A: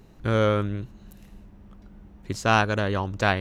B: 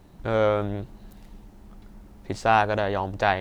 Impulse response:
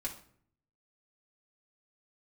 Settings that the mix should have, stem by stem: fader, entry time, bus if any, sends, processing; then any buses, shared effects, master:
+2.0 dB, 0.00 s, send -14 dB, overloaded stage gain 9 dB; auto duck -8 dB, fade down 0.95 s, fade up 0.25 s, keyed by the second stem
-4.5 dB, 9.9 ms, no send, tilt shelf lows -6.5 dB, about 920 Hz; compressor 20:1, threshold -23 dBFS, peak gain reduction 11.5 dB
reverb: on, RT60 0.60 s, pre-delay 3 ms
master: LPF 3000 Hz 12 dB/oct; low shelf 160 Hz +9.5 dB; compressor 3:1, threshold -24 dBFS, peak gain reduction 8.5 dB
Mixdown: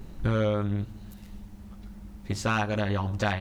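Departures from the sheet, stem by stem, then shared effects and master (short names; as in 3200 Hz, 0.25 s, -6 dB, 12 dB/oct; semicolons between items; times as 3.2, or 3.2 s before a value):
stem B: missing compressor 20:1, threshold -23 dBFS, peak gain reduction 11.5 dB; master: missing LPF 3000 Hz 12 dB/oct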